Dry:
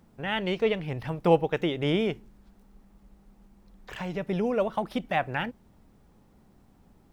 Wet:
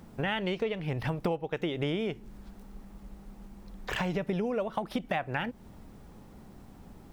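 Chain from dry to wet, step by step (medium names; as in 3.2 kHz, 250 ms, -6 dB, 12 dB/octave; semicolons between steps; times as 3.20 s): compression 12:1, threshold -36 dBFS, peak gain reduction 22 dB; trim +8.5 dB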